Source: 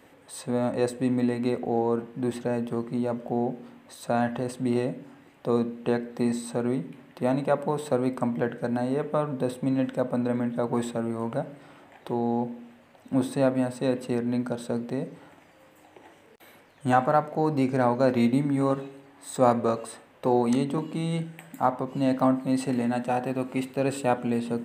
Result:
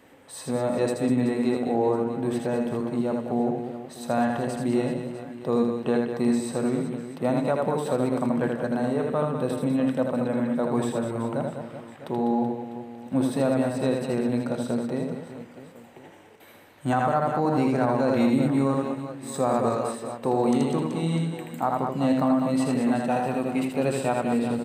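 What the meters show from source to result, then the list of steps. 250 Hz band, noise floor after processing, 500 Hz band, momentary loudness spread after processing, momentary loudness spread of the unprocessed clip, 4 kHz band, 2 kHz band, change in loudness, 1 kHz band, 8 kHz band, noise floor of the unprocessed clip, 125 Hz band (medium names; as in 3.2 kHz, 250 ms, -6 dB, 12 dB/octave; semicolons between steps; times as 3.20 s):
+2.0 dB, -48 dBFS, +1.5 dB, 9 LU, 10 LU, +2.0 dB, +1.5 dB, +1.5 dB, +1.0 dB, +2.0 dB, -56 dBFS, +2.0 dB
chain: reverse bouncing-ball echo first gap 80 ms, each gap 1.5×, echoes 5; peak limiter -12.5 dBFS, peak gain reduction 7 dB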